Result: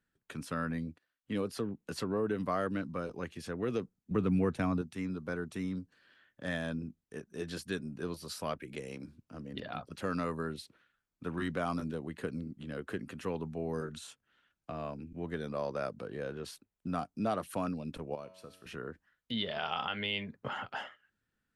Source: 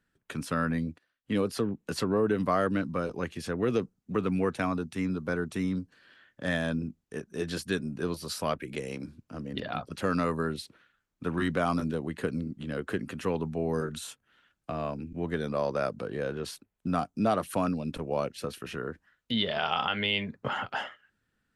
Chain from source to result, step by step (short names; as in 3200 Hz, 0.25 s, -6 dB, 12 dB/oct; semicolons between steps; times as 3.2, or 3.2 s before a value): 4.11–4.82 low shelf 290 Hz +10 dB; 13.96–14.76 LPF 9300 Hz 12 dB/oct; 18.15–18.66 resonator 93 Hz, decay 1.3 s, harmonics all, mix 70%; gain -6.5 dB